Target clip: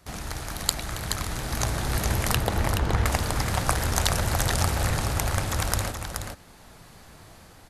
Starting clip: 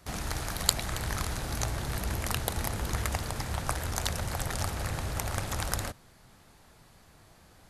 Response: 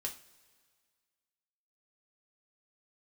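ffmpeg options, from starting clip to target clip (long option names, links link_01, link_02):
-filter_complex "[0:a]asettb=1/sr,asplit=3[link_01][link_02][link_03];[link_01]atrim=end=2.364[link_04];[link_02]atrim=start=2.36:end=3.06,asetpts=PTS-STARTPTS,afade=type=in:duration=0.004:curve=qsin,afade=type=out:start_time=0.696:duration=0.004:curve=qsin,aemphasis=mode=reproduction:type=75fm[link_05];[link_03]atrim=start=3.056[link_06];[link_04][link_05]acrossfade=duration=0.004:curve1=hsin:curve2=qsin[link_07];[link_07][link_06]acrossfade=duration=0.004:curve1=qsin:curve2=hsin,asplit=2[link_08][link_09];[link_09]aecho=0:1:425:0.473[link_10];[link_08][link_10]amix=inputs=2:normalize=0,dynaudnorm=framelen=200:gausssize=7:maxgain=8dB"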